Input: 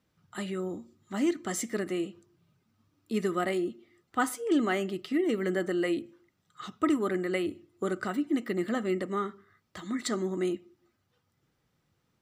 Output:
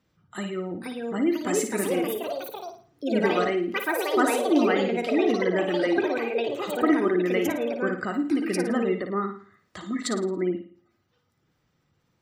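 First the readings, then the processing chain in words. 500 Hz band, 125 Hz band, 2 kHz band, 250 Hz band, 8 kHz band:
+7.0 dB, +3.5 dB, +7.0 dB, +5.0 dB, +4.5 dB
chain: spectral gate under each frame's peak -30 dB strong; ever faster or slower copies 557 ms, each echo +4 st, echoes 3; flutter echo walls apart 9.5 m, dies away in 0.44 s; trim +3 dB

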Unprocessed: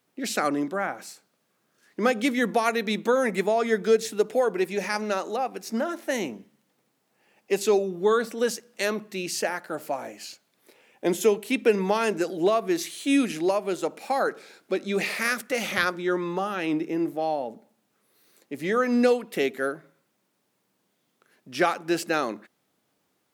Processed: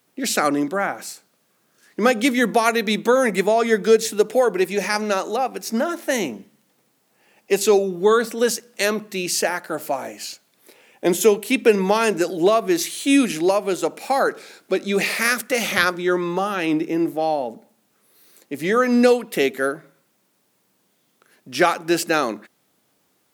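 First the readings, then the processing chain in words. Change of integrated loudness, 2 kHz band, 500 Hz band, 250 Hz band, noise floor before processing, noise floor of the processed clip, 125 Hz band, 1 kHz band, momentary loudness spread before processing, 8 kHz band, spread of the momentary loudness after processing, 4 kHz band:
+6.0 dB, +6.0 dB, +5.5 dB, +5.5 dB, -73 dBFS, -66 dBFS, +5.5 dB, +5.5 dB, 9 LU, +8.5 dB, 10 LU, +7.0 dB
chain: treble shelf 5.6 kHz +5 dB; trim +5.5 dB

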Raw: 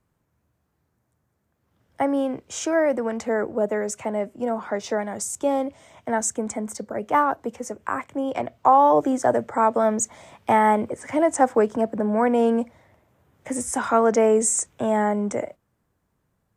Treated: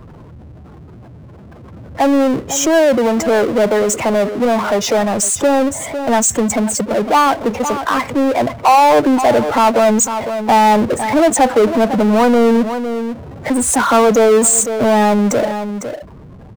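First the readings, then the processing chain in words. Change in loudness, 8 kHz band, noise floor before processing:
+9.0 dB, +11.5 dB, -73 dBFS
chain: delay 504 ms -18.5 dB; spectral gate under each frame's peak -15 dB strong; power-law waveshaper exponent 0.5; trim +3 dB

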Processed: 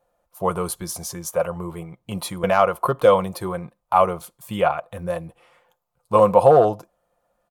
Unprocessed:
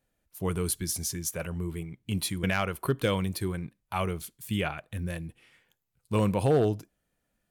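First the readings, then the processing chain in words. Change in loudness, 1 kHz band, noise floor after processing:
+10.0 dB, +16.0 dB, -74 dBFS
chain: high-order bell 780 Hz +16 dB; comb 5.7 ms, depth 37%

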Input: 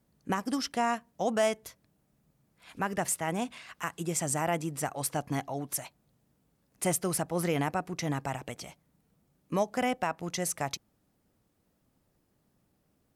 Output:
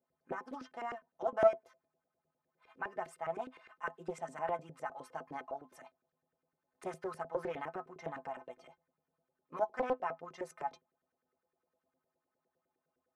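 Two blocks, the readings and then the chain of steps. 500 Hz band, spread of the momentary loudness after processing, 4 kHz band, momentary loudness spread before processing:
-3.5 dB, 12 LU, -20.5 dB, 10 LU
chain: inharmonic resonator 76 Hz, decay 0.26 s, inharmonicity 0.03; LFO band-pass saw up 9.8 Hz 420–1700 Hz; loudspeaker Doppler distortion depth 0.53 ms; trim +6.5 dB

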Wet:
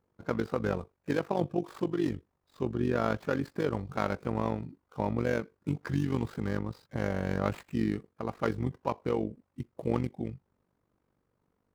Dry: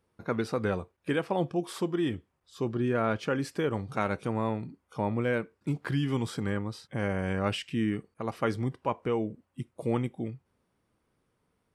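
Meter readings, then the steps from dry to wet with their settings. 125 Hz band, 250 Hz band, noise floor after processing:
-1.0 dB, -1.0 dB, -78 dBFS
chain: median filter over 15 samples; AM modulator 48 Hz, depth 65%; trim +2.5 dB

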